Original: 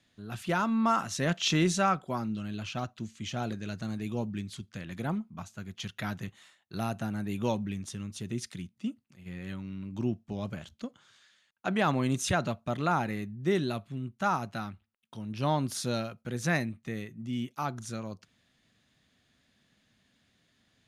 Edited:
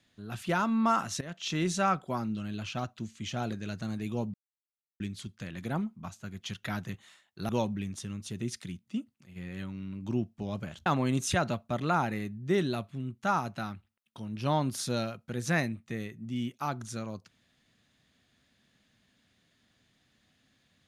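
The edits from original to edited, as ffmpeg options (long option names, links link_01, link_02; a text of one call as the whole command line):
ffmpeg -i in.wav -filter_complex "[0:a]asplit=5[link_01][link_02][link_03][link_04][link_05];[link_01]atrim=end=1.21,asetpts=PTS-STARTPTS,afade=type=out:start_time=1.206:duration=0.004:curve=hsin:silence=0.125893[link_06];[link_02]atrim=start=1.21:end=4.34,asetpts=PTS-STARTPTS,afade=type=in:duration=0.74:silence=0.125893,afade=type=out:start_time=3.126:duration=0.004:curve=hsin,apad=pad_dur=0.66[link_07];[link_03]atrim=start=4.34:end=6.832,asetpts=PTS-STARTPTS,afade=type=in:duration=0.004:curve=hsin[link_08];[link_04]atrim=start=7.388:end=10.762[link_09];[link_05]atrim=start=11.828[link_10];[link_06][link_07][link_08]concat=n=3:v=0:a=1[link_11];[link_11][link_09]acrossfade=duration=0.004:curve1=hsin:curve2=hsin[link_12];[link_12][link_10]acrossfade=duration=0.004:curve1=hsin:curve2=hsin" out.wav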